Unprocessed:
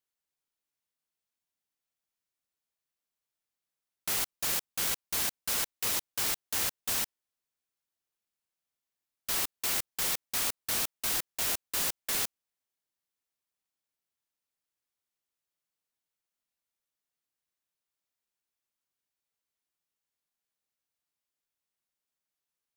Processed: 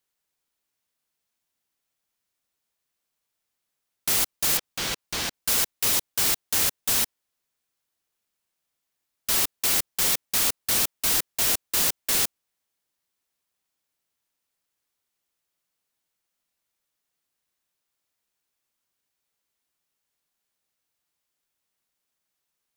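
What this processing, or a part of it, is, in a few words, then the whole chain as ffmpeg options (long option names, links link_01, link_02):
one-band saturation: -filter_complex "[0:a]asettb=1/sr,asplit=3[link_01][link_02][link_03];[link_01]atrim=end=4.574[link_04];[link_02]atrim=start=4.57:end=5.34,asetpts=PTS-STARTPTS,afade=type=in:duration=0.004:curve=qsin,afade=type=out:start_time=0.766:duration=0.004:curve=qsin,acrossover=split=6000[link_05][link_06];[link_06]acompressor=threshold=-43dB:ratio=4:attack=1:release=60[link_07];[link_05][link_07]amix=inputs=2:normalize=0[link_08];[link_03]atrim=start=5.336[link_09];[link_04][link_08]acrossfade=duration=0.004:curve1=hsin:curve2=qsin[link_10];[link_10][link_09]acrossfade=duration=0.004:curve1=qsin:curve2=hsin,acrossover=split=510|2800[link_11][link_12][link_13];[link_12]asoftclip=type=tanh:threshold=-38.5dB[link_14];[link_11][link_14][link_13]amix=inputs=3:normalize=0,volume=8dB"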